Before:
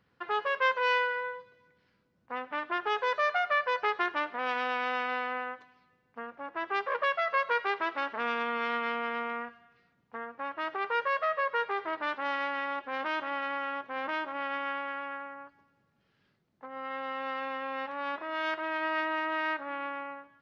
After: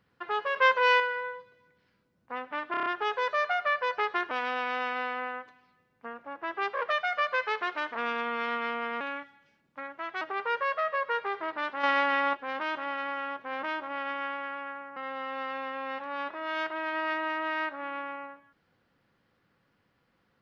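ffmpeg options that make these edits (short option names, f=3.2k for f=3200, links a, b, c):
-filter_complex "[0:a]asplit=16[a][b][c][d][e][f][g][h][i][j][k][l][m][n][o][p];[a]atrim=end=0.562[q];[b]atrim=start=0.558:end=1.002,asetpts=PTS-STARTPTS,volume=4.5dB[r];[c]atrim=start=0.998:end=2.742[s];[d]atrim=start=2.708:end=2.742[t];[e]atrim=start=2.708:end=2.742[u];[f]atrim=start=2.708:end=2.742[v];[g]atrim=start=2.708:end=2.742[w];[h]atrim=start=2.708:end=4.162[x];[i]atrim=start=4.438:end=7.014[y];[j]atrim=start=7.01:end=8.17,asetpts=PTS-STARTPTS,asetrate=47628,aresample=44100[z];[k]atrim=start=8.166:end=9.224[aa];[l]atrim=start=9.22:end=10.66,asetpts=PTS-STARTPTS,asetrate=52479,aresample=44100[ab];[m]atrim=start=10.656:end=12.282[ac];[n]atrim=start=12.278:end=12.782,asetpts=PTS-STARTPTS,volume=7dB[ad];[o]atrim=start=12.778:end=15.412[ae];[p]atrim=start=16.838[af];[q][r]acrossfade=d=0.004:c1=hsin:c2=hsin[ag];[ag][s]acrossfade=d=0.004:c1=hsin:c2=hsin[ah];[ah][t]acrossfade=d=0.004:c1=hsin:c2=hsin[ai];[ai][u]acrossfade=d=0.004:c1=hsin:c2=hsin[aj];[aj][v]acrossfade=d=0.004:c1=hsin:c2=hsin[ak];[ak][w]acrossfade=d=0.004:c1=hsin:c2=hsin[al];[al][x]acrossfade=d=0.004:c1=hsin:c2=hsin[am];[am][y]acrossfade=d=0.004:c1=hsin:c2=hsin[an];[an][z]acrossfade=d=0.004:c1=hsin:c2=hsin[ao];[ao][aa]acrossfade=d=0.004:c1=hsin:c2=hsin[ap];[ap][ab]acrossfade=d=0.004:c1=hsin:c2=hsin[aq];[aq][ac]acrossfade=d=0.004:c1=hsin:c2=hsin[ar];[ar][ad]acrossfade=d=0.004:c1=hsin:c2=hsin[as];[as][ae]acrossfade=d=0.004:c1=hsin:c2=hsin[at];[at][af]acrossfade=d=0.004:c1=hsin:c2=hsin"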